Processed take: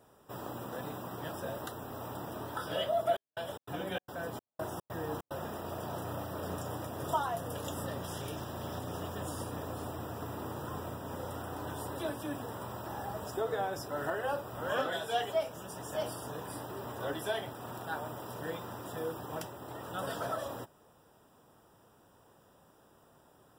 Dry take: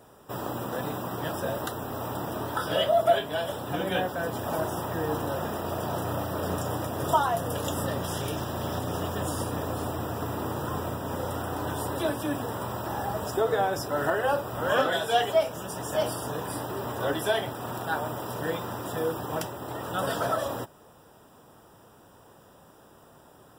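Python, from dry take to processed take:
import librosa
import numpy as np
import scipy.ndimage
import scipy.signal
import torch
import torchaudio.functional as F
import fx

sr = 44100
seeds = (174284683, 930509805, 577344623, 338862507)

y = fx.step_gate(x, sr, bpm=147, pattern='xxx.xxx..xx.', floor_db=-60.0, edge_ms=4.5, at=(2.97, 5.45), fade=0.02)
y = F.gain(torch.from_numpy(y), -8.5).numpy()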